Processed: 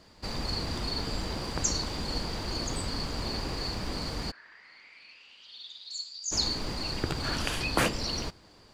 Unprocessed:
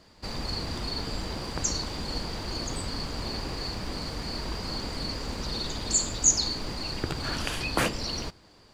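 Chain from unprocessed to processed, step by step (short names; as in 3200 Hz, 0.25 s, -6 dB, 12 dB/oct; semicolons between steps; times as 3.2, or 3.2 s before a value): 4.3–6.31 band-pass 1600 Hz -> 5000 Hz, Q 8.4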